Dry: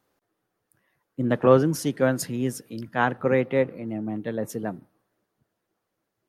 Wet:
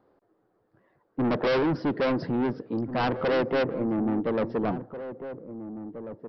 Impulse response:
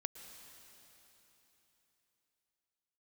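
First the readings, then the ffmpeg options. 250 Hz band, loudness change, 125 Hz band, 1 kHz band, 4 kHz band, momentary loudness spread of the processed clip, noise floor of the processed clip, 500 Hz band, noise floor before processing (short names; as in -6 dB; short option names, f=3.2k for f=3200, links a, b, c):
0.0 dB, -2.5 dB, -5.0 dB, -1.5 dB, +2.0 dB, 14 LU, -70 dBFS, -3.0 dB, -80 dBFS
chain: -filter_complex "[0:a]firequalizer=gain_entry='entry(140,0);entry(360,6);entry(2600,-13)':delay=0.05:min_phase=1,aresample=11025,asoftclip=type=tanh:threshold=-27.5dB,aresample=44100,asplit=2[a][b];[b]adelay=1691,volume=-11dB,highshelf=f=4k:g=-38[c];[a][c]amix=inputs=2:normalize=0,volume=5.5dB"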